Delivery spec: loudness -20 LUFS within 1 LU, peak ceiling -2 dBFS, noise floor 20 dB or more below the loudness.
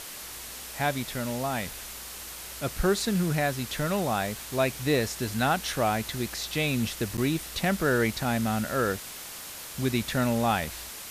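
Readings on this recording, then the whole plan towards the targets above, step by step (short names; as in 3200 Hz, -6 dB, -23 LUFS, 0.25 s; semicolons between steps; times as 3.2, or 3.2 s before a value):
dropouts 1; longest dropout 8.9 ms; noise floor -41 dBFS; noise floor target -49 dBFS; loudness -28.5 LUFS; peak -13.0 dBFS; loudness target -20.0 LUFS
-> interpolate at 7.17, 8.9 ms; noise print and reduce 8 dB; gain +8.5 dB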